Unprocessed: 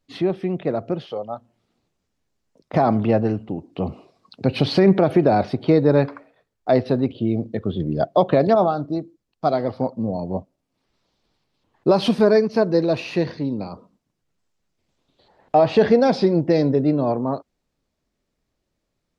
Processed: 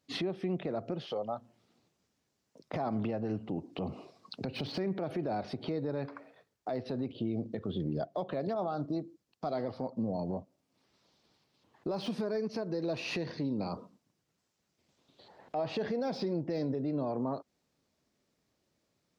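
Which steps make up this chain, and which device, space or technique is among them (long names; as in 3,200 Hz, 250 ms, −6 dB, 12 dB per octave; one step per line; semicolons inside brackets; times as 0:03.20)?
broadcast voice chain (high-pass filter 100 Hz; de-essing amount 85%; downward compressor 5 to 1, threshold −29 dBFS, peak gain reduction 17 dB; parametric band 5,500 Hz +3 dB 0.83 octaves; brickwall limiter −25.5 dBFS, peak gain reduction 11 dB)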